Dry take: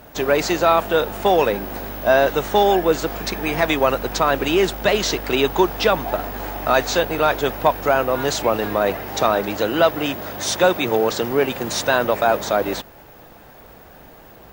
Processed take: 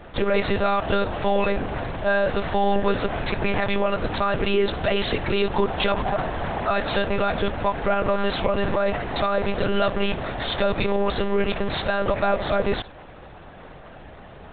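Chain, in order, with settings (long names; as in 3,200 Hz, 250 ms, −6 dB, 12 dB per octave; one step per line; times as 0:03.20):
brickwall limiter −14 dBFS, peak gain reduction 10.5 dB
flutter between parallel walls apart 11.1 metres, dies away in 0.21 s
one-pitch LPC vocoder at 8 kHz 200 Hz
level +2.5 dB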